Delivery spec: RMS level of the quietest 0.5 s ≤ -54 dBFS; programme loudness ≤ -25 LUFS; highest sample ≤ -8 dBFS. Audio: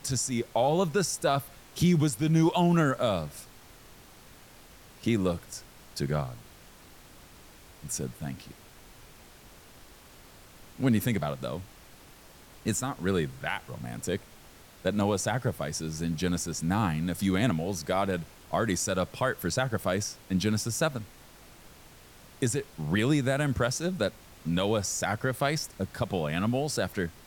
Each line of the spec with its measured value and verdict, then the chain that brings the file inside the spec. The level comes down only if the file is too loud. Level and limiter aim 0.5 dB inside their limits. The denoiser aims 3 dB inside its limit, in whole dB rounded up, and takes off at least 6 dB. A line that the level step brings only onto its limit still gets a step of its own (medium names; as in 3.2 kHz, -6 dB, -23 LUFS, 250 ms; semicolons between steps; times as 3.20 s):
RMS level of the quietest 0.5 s -52 dBFS: fail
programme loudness -29.0 LUFS: pass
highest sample -14.5 dBFS: pass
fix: noise reduction 6 dB, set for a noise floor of -52 dBFS